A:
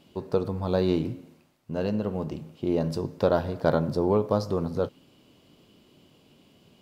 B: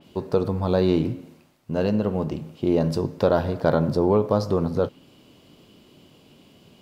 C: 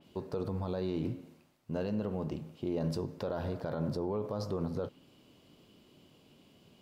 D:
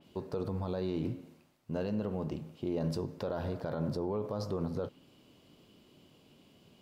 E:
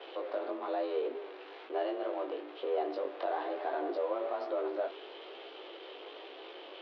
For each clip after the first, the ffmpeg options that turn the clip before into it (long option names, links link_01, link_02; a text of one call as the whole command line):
ffmpeg -i in.wav -filter_complex "[0:a]asplit=2[link_01][link_02];[link_02]alimiter=limit=-16.5dB:level=0:latency=1,volume=-1.5dB[link_03];[link_01][link_03]amix=inputs=2:normalize=0,adynamicequalizer=threshold=0.00501:dfrequency=3900:dqfactor=0.7:tfrequency=3900:tqfactor=0.7:attack=5:release=100:ratio=0.375:range=1.5:mode=cutabove:tftype=highshelf" out.wav
ffmpeg -i in.wav -af "alimiter=limit=-16dB:level=0:latency=1:release=42,volume=-8.5dB" out.wav
ffmpeg -i in.wav -af anull out.wav
ffmpeg -i in.wav -af "aeval=exprs='val(0)+0.5*0.00794*sgn(val(0))':channel_layout=same,flanger=delay=15:depth=5.8:speed=1.1,highpass=frequency=220:width_type=q:width=0.5412,highpass=frequency=220:width_type=q:width=1.307,lowpass=frequency=3600:width_type=q:width=0.5176,lowpass=frequency=3600:width_type=q:width=0.7071,lowpass=frequency=3600:width_type=q:width=1.932,afreqshift=140,volume=4dB" out.wav